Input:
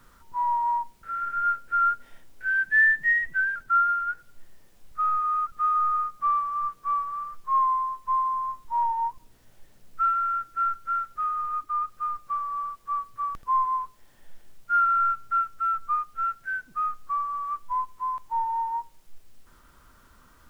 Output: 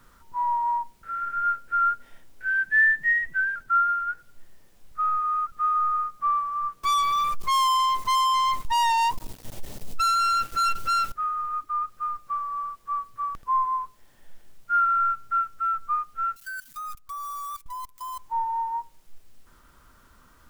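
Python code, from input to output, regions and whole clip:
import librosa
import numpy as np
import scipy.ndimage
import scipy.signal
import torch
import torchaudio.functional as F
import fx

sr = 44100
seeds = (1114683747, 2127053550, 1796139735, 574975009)

y = fx.chain(x, sr, fx.peak_eq(hz=1600.0, db=-9.0, octaves=0.96),
    fx.leveller(passes=5), at=(6.83, 11.12))
y = fx.chain(y, sr, fx.crossing_spikes(level_db=-28.5),
    fx.comb(ms=7.1, depth=0.38),
    fx.level_steps(step_db=17), at=(16.36, 18.19))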